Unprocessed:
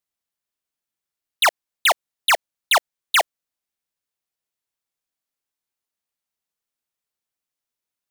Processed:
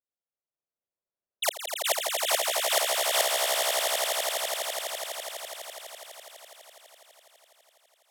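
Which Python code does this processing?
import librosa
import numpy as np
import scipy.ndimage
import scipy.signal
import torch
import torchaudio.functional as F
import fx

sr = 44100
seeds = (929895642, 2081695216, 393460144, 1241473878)

y = scipy.signal.lfilter([1.0, -0.9], [1.0], x)
y = fx.env_lowpass(y, sr, base_hz=760.0, full_db=-23.0)
y = fx.peak_eq(y, sr, hz=520.0, db=8.0, octaves=1.2)
y = fx.over_compress(y, sr, threshold_db=-27.0, ratio=-0.5)
y = fx.echo_swell(y, sr, ms=83, loudest=8, wet_db=-5.0)
y = F.gain(torch.from_numpy(y), 2.5).numpy()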